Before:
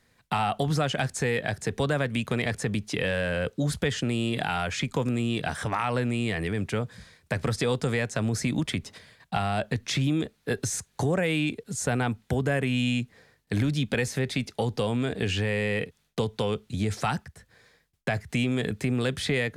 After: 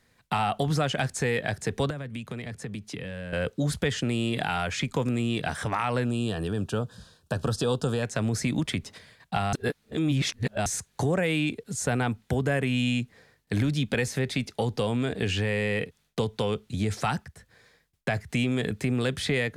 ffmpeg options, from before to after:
-filter_complex "[0:a]asettb=1/sr,asplit=3[a][b][c];[a]atrim=end=1.904[d];[b]atrim=start=1.9:end=3.33,asetpts=PTS-STARTPTS,afade=t=in:d=0.004:c=qsin,afade=t=out:st=1.426:d=0.004:c=qsin,acrossover=split=100|260[e][f][g];[e]acompressor=threshold=-50dB:ratio=4[h];[f]acompressor=threshold=-38dB:ratio=4[i];[g]acompressor=threshold=-40dB:ratio=4[j];[h][i][j]amix=inputs=3:normalize=0[k];[c]atrim=start=3.326[l];[d][k]acrossfade=d=0.004:c1=hsin:c2=qsin[m];[m][l]acrossfade=d=0.004:c1=qsin:c2=hsin,asettb=1/sr,asplit=3[n][o][p];[n]atrim=end=6.054[q];[o]atrim=start=6.05:end=8.03,asetpts=PTS-STARTPTS,afade=t=in:d=0.004:c=qsin,afade=t=out:st=1.976:d=0.004:c=qsin,asuperstop=centerf=2100:order=4:qfactor=1.9[r];[p]atrim=start=8.026[s];[q][r]acrossfade=d=0.004:c1=hsin:c2=qsin[t];[t][s]acrossfade=d=0.004:c1=qsin:c2=hsin,asplit=3[u][v][w];[u]atrim=end=9.532[x];[v]atrim=start=9.528:end=10.662,asetpts=PTS-STARTPTS,areverse[y];[w]atrim=start=10.658[z];[x][y]acrossfade=d=0.004:c1=hsin:c2=hsin[aa];[aa][z]acrossfade=d=0.004:c1=hsin:c2=hsin"

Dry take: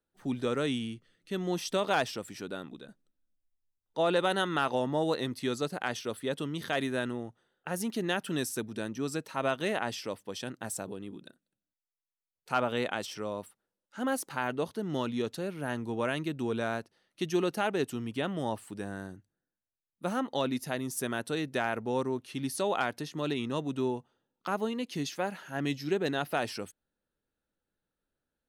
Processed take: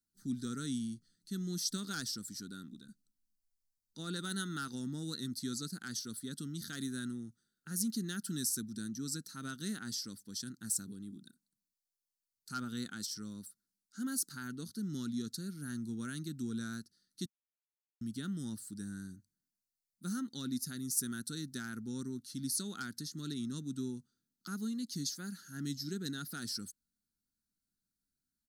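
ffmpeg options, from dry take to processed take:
-filter_complex "[0:a]asplit=3[a][b][c];[a]atrim=end=17.26,asetpts=PTS-STARTPTS,afade=t=out:st=17.256:d=0.004:c=hsin[d];[b]atrim=start=17.26:end=18.01,asetpts=PTS-STARTPTS,volume=0[e];[c]atrim=start=18.01,asetpts=PTS-STARTPTS,afade=t=in:d=0.004:c=hsin[f];[d][e][f]concat=n=3:v=0:a=1,firequalizer=gain_entry='entry(140,0);entry(210,5);entry(590,-29);entry(1000,-22);entry(1400,-3);entry(2500,-20);entry(4300,9)':delay=0.05:min_phase=1,volume=-5dB"

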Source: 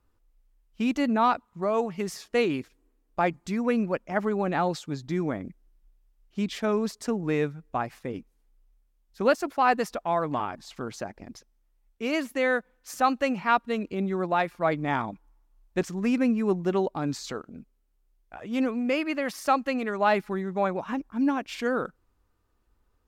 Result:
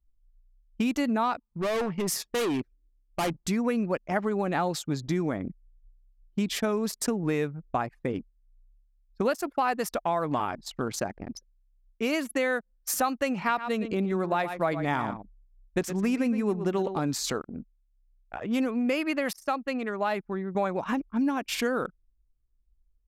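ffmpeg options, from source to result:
-filter_complex "[0:a]asettb=1/sr,asplit=3[a][b][c];[a]atrim=end=1.474[d];[b]atrim=start=1.47:end=3.36,asetpts=PTS-STARTPTS,afade=t=in:d=0.004:c=qsin,afade=t=out:st=1.886:d=0.004:c=qsin,asoftclip=type=hard:threshold=-30dB[e];[c]atrim=start=3.356[f];[d][e]acrossfade=d=0.004:c1=hsin:c2=qsin[g];[g][f]acrossfade=d=0.004:c1=qsin:c2=hsin,asettb=1/sr,asplit=3[h][i][j];[h]atrim=end=13.374[k];[i]atrim=start=13.37:end=17.03,asetpts=PTS-STARTPTS,afade=t=in:d=0.004:c=qsin,afade=t=out:st=3.656:d=0.004:c=qsin,aecho=1:1:116:0.251,atrim=end_sample=161406[l];[j]atrim=start=17.026[m];[k][l]acrossfade=d=0.004:c1=hsin:c2=qsin[n];[n][m]acrossfade=d=0.004:c1=qsin:c2=hsin,asplit=3[o][p][q];[o]atrim=end=19.332[r];[p]atrim=start=19.328:end=20.552,asetpts=PTS-STARTPTS,volume=-7dB[s];[q]atrim=start=20.548[t];[r][s]acrossfade=d=0.004:c1=hsin:c2=hsin[u];[u][t]acrossfade=d=0.004:c1=hsin:c2=hsin,anlmdn=0.0631,equalizer=f=12k:t=o:w=1.1:g=11,acompressor=threshold=-30dB:ratio=4,volume=5.5dB"

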